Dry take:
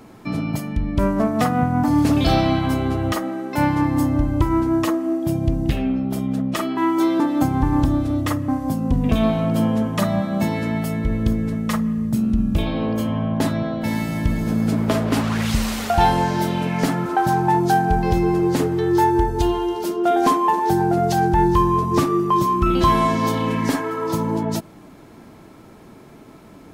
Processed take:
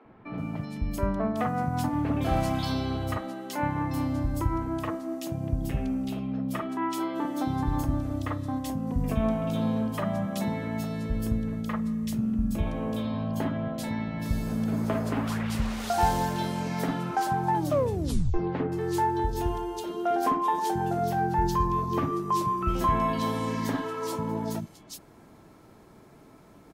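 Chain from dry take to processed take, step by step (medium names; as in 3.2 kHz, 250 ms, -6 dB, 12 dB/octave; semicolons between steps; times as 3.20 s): 17.55 s: tape stop 0.79 s; 20.71–21.75 s: peaking EQ 9.1 kHz -6.5 dB 0.53 oct; three bands offset in time mids, lows, highs 50/380 ms, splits 260/2800 Hz; trim -7.5 dB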